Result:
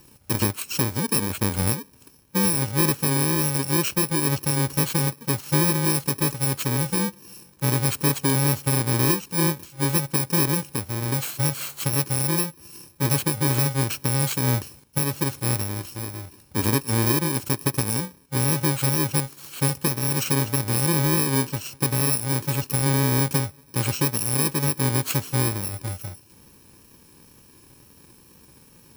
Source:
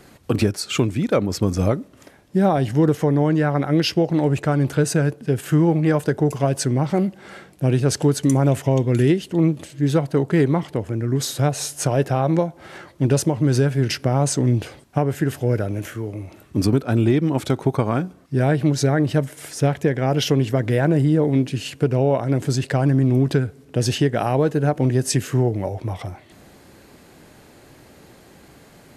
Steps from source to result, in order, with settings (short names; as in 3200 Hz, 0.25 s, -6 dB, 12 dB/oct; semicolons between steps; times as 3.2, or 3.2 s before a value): FFT order left unsorted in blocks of 64 samples; wow and flutter 25 cents; gain -3.5 dB